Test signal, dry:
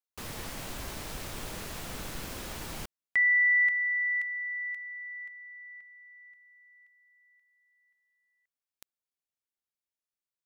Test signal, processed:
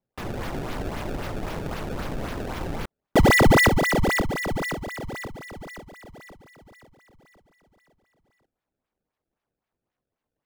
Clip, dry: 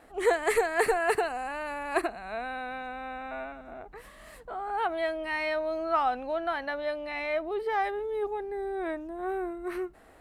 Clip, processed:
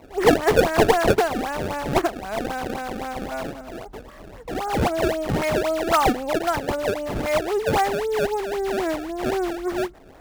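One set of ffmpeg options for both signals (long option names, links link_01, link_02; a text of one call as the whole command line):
ffmpeg -i in.wav -af "acrusher=samples=25:mix=1:aa=0.000001:lfo=1:lforange=40:lforate=3.8,highshelf=frequency=2500:gain=-8,volume=9dB" out.wav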